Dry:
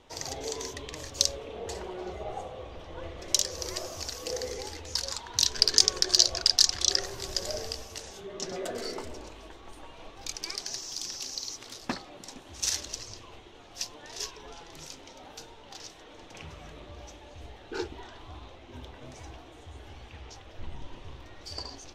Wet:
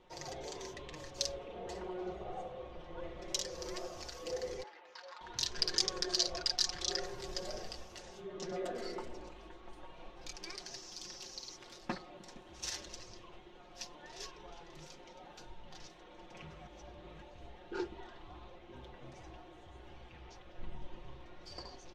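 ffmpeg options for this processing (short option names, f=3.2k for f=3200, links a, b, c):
-filter_complex "[0:a]asettb=1/sr,asplit=3[a][b][c];[a]atrim=end=4.634[d];[b]atrim=start=4.63:end=5.21,asetpts=PTS-STARTPTS,afade=t=in:d=0.004:c=qsin,afade=t=out:st=0.576:d=0.004:c=qsin,highpass=780,lowpass=2.2k[e];[c]atrim=start=5.206[f];[d][e]acrossfade=d=0.004:c1=hsin:c2=qsin[g];[g][f]acrossfade=d=0.004:c1=qsin:c2=hsin,asplit=3[h][i][j];[h]afade=t=out:st=15.45:d=0.02[k];[i]asubboost=boost=2.5:cutoff=190,afade=t=in:st=15.45:d=0.02,afade=t=out:st=15.86:d=0.02[l];[j]afade=t=in:st=15.86:d=0.02[m];[k][l][m]amix=inputs=3:normalize=0,asplit=3[n][o][p];[n]atrim=end=16.672[q];[o]atrim=start=16.668:end=17.222,asetpts=PTS-STARTPTS,areverse[r];[p]atrim=start=17.218[s];[q][r]acrossfade=d=0.004:c1=hsin:c2=hsin[t];[t][s]acrossfade=d=0.004:c1=hsin:c2=hsin,lowpass=f=2.5k:p=1,aecho=1:1:5.6:0.65,volume=-6dB"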